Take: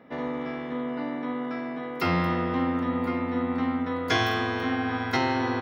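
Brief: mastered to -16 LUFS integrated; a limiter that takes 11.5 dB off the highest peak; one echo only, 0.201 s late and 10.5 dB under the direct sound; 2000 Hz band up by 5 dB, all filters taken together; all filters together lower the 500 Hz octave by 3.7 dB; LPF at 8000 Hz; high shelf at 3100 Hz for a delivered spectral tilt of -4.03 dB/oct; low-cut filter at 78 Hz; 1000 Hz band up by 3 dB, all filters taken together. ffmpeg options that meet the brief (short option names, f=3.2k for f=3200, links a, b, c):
-af "highpass=78,lowpass=8k,equalizer=f=500:t=o:g=-6,equalizer=f=1k:t=o:g=4.5,equalizer=f=2k:t=o:g=7.5,highshelf=f=3.1k:g=-8,alimiter=limit=-21.5dB:level=0:latency=1,aecho=1:1:201:0.299,volume=14.5dB"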